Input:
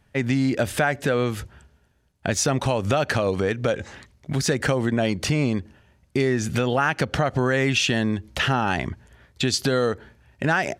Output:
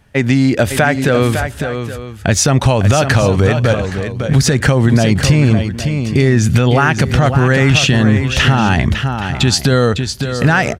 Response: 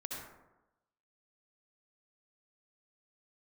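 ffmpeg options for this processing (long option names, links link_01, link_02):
-filter_complex "[0:a]asubboost=boost=2.5:cutoff=200,asplit=2[link_01][link_02];[link_02]aecho=0:1:555|820:0.376|0.168[link_03];[link_01][link_03]amix=inputs=2:normalize=0,alimiter=level_in=10.5dB:limit=-1dB:release=50:level=0:latency=1,volume=-1dB"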